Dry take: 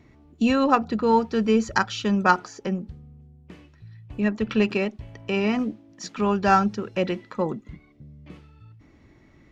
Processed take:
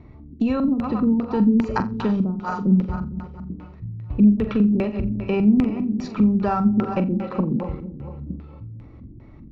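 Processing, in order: regenerating reverse delay 0.114 s, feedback 73%, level -13.5 dB; band shelf 2200 Hz -12.5 dB 1.3 oct; compressor 6:1, threshold -25 dBFS, peak gain reduction 11.5 dB; LFO low-pass square 2.5 Hz 240–2400 Hz; low shelf 120 Hz +9.5 dB; flutter echo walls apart 7.4 m, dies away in 0.24 s; gain +4.5 dB

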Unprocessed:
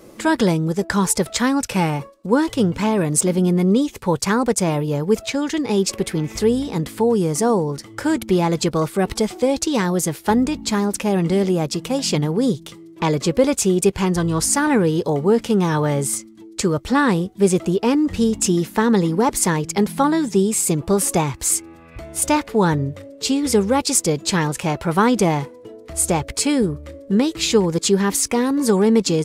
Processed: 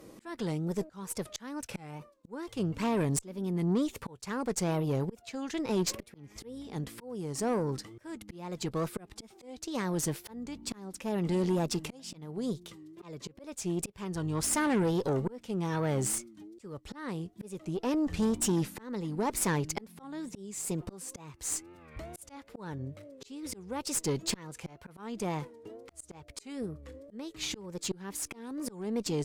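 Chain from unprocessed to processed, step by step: auto swell 0.775 s; wow and flutter 120 cents; tube stage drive 17 dB, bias 0.45; gain -6 dB

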